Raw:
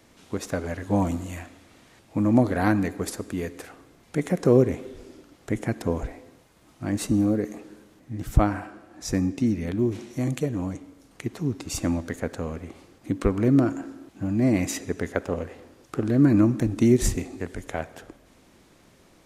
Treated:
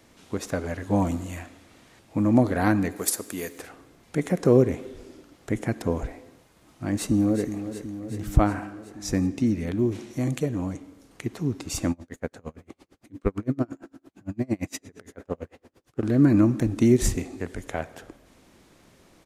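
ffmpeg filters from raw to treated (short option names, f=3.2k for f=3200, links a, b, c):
-filter_complex "[0:a]asettb=1/sr,asplit=3[a][b][c];[a]atrim=end=2.964[d];[b]atrim=start=2.96:end=3.59,asetpts=PTS-STARTPTS,afade=t=in:d=0.004:c=qsin,afade=t=out:st=0.626:d=0.004:c=qsin,aemphasis=mode=production:type=bsi[e];[c]atrim=start=3.586[f];[d][e]acrossfade=d=0.004:c1=hsin:c2=qsin[g];[g][f]acrossfade=d=0.004:c1=qsin:c2=hsin,asplit=2[h][i];[i]afade=t=in:st=6.91:d=0.01,afade=t=out:st=7.54:d=0.01,aecho=0:1:370|740|1110|1480|1850|2220|2590|2960|3330|3700:0.281838|0.197287|0.138101|0.0966705|0.0676694|0.0473686|0.033158|0.0232106|0.0162474|0.0113732[j];[h][j]amix=inputs=2:normalize=0,asettb=1/sr,asplit=3[k][l][m];[k]atrim=end=11.914[n];[l]atrim=start=11.91:end=16.03,asetpts=PTS-STARTPTS,afade=t=in:d=0.004:c=qsin,afade=t=out:st=4.116:d=0.004:c=qsin,aeval=exprs='val(0)*pow(10,-35*(0.5-0.5*cos(2*PI*8.8*n/s))/20)':c=same[o];[m]atrim=start=16.026[p];[n][o]acrossfade=d=0.004:c1=hsin:c2=qsin[q];[q][p]acrossfade=d=0.004:c1=qsin:c2=hsin"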